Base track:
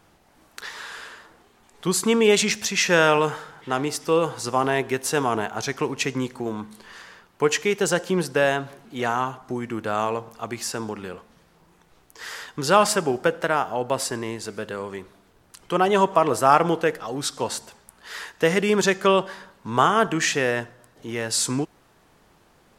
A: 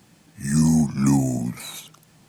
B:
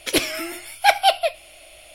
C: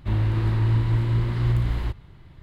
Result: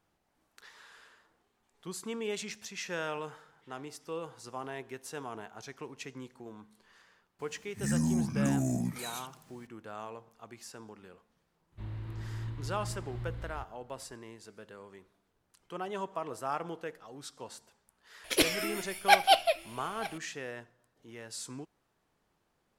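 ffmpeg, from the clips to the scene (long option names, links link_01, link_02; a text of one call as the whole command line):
ffmpeg -i bed.wav -i cue0.wav -i cue1.wav -i cue2.wav -filter_complex "[0:a]volume=-18.5dB[link_01];[1:a]acompressor=threshold=-19dB:ratio=6:attack=3.2:release=140:knee=1:detection=peak[link_02];[2:a]aecho=1:1:925:0.112[link_03];[link_02]atrim=end=2.28,asetpts=PTS-STARTPTS,volume=-6dB,afade=type=in:duration=0.004:curve=hsin,afade=type=out:start_time=2.276:duration=0.004:curve=hsin,adelay=7390[link_04];[3:a]atrim=end=2.42,asetpts=PTS-STARTPTS,volume=-18dB,afade=type=in:duration=0.004:curve=hsin,afade=type=out:start_time=2.416:duration=0.004:curve=hsin,adelay=11720[link_05];[link_03]atrim=end=1.94,asetpts=PTS-STARTPTS,volume=-6dB,afade=type=in:duration=0.004:curve=hsin,afade=type=out:start_time=1.936:duration=0.004:curve=hsin,adelay=18240[link_06];[link_01][link_04][link_05][link_06]amix=inputs=4:normalize=0" out.wav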